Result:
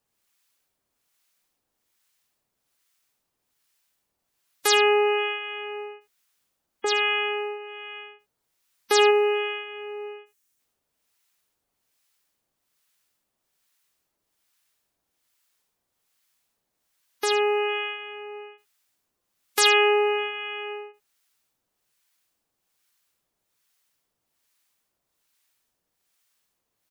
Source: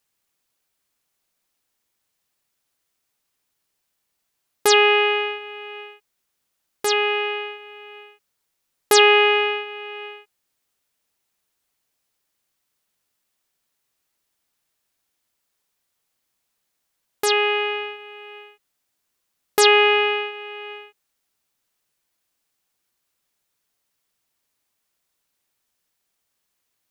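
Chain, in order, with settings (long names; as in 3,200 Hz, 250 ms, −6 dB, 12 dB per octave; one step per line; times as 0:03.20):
two-band tremolo in antiphase 1.2 Hz, depth 70%, crossover 1,000 Hz
gate on every frequency bin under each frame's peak −20 dB strong
in parallel at +1.5 dB: downward compressor 8 to 1, threshold −33 dBFS, peak gain reduction 20 dB
on the sum: gain on a spectral selection 0:09.11–0:10.59, 420–5,400 Hz −6 dB
floating-point word with a short mantissa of 6 bits
on a send: single-tap delay 77 ms −14.5 dB
on the sum: level −2.5 dB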